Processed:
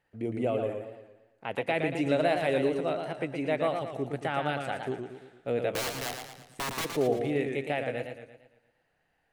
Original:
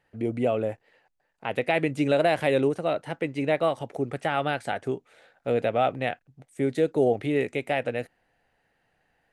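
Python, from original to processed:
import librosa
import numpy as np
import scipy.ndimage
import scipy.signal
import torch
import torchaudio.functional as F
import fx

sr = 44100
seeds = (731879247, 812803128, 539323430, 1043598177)

y = fx.overflow_wrap(x, sr, gain_db=22.5, at=(5.72, 6.84), fade=0.02)
y = fx.echo_warbled(y, sr, ms=114, feedback_pct=48, rate_hz=2.8, cents=105, wet_db=-6.0)
y = F.gain(torch.from_numpy(y), -5.0).numpy()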